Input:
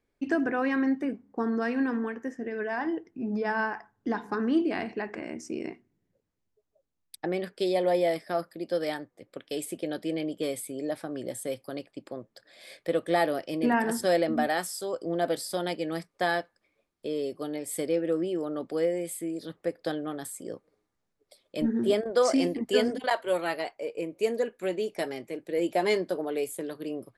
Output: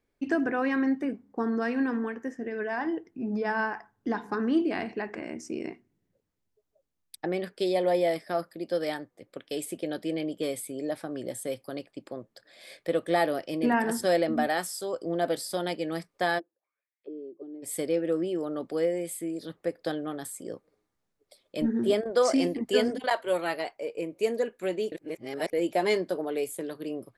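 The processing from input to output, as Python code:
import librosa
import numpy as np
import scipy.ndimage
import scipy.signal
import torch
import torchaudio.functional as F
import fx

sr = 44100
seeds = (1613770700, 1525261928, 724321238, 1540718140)

y = fx.auto_wah(x, sr, base_hz=340.0, top_hz=2300.0, q=6.8, full_db=-30.5, direction='down', at=(16.38, 17.62), fade=0.02)
y = fx.edit(y, sr, fx.reverse_span(start_s=24.92, length_s=0.61), tone=tone)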